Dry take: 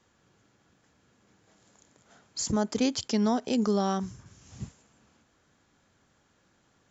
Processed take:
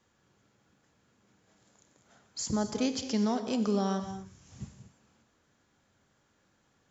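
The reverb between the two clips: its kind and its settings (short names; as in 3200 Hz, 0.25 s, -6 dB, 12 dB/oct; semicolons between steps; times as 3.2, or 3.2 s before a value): non-linear reverb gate 0.27 s flat, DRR 7.5 dB; gain -4 dB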